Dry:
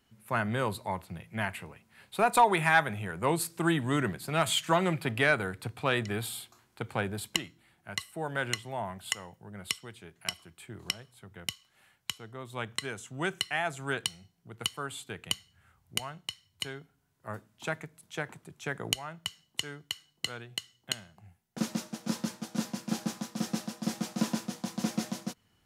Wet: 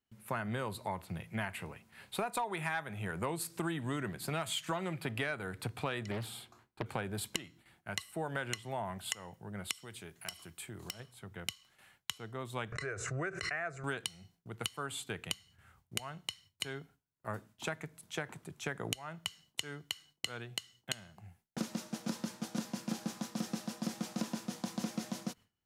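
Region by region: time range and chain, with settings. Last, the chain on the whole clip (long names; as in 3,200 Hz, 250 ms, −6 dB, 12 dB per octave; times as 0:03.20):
0:06.11–0:06.86: high-shelf EQ 2,800 Hz −10 dB + highs frequency-modulated by the lows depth 0.55 ms
0:09.71–0:11.00: downward compressor 2 to 1, threshold −46 dBFS + high-shelf EQ 5,600 Hz +8 dB + hard clipping −30.5 dBFS
0:12.72–0:13.84: high-frequency loss of the air 120 metres + phaser with its sweep stopped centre 880 Hz, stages 6 + background raised ahead of every attack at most 48 dB per second
whole clip: noise gate with hold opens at −54 dBFS; downward compressor 6 to 1, threshold −35 dBFS; level +1.5 dB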